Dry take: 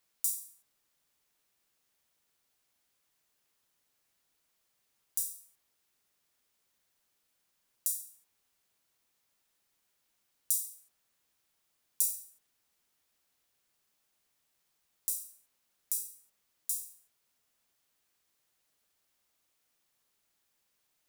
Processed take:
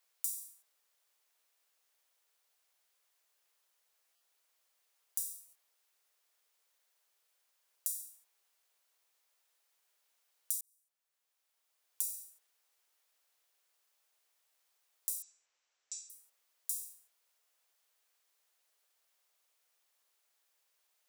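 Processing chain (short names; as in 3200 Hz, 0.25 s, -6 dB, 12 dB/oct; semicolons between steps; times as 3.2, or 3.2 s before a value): 15.22–16.1 rippled Chebyshev low-pass 7800 Hz, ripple 3 dB; compressor 4:1, threshold -32 dBFS, peak gain reduction 8 dB; HPF 440 Hz 24 dB/oct; 10.61–12.05 fade in; stuck buffer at 4.15/5.47, samples 256, times 9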